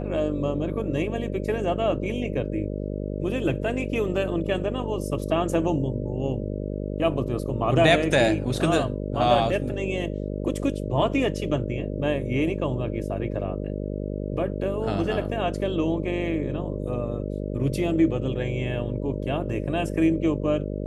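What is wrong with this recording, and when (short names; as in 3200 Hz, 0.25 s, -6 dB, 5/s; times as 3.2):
buzz 50 Hz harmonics 12 -30 dBFS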